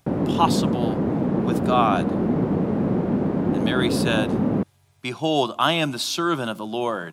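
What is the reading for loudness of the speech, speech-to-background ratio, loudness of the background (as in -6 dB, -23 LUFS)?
-24.5 LUFS, -1.5 dB, -23.0 LUFS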